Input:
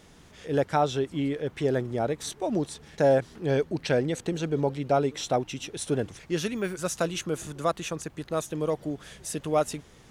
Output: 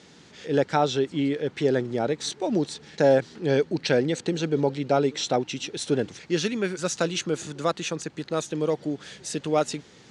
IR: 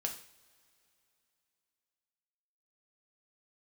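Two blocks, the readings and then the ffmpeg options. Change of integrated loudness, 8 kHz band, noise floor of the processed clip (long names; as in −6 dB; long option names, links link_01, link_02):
+2.5 dB, +2.5 dB, −52 dBFS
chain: -af "highpass=150,equalizer=frequency=660:width_type=q:width=4:gain=-5,equalizer=frequency=1100:width_type=q:width=4:gain=-5,equalizer=frequency=4300:width_type=q:width=4:gain=5,lowpass=frequency=7800:width=0.5412,lowpass=frequency=7800:width=1.3066,volume=4dB"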